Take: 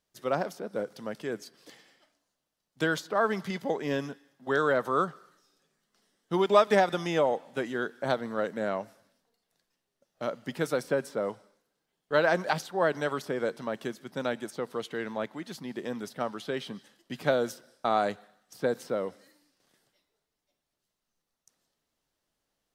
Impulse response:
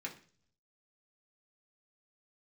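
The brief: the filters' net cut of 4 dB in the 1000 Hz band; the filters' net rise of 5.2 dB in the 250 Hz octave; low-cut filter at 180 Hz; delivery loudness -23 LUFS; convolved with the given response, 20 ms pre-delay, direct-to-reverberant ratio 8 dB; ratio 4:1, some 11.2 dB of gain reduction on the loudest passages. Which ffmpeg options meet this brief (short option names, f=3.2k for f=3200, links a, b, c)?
-filter_complex "[0:a]highpass=180,equalizer=f=250:t=o:g=8.5,equalizer=f=1k:t=o:g=-6.5,acompressor=threshold=-31dB:ratio=4,asplit=2[a][b];[1:a]atrim=start_sample=2205,adelay=20[c];[b][c]afir=irnorm=-1:irlink=0,volume=-8dB[d];[a][d]amix=inputs=2:normalize=0,volume=13dB"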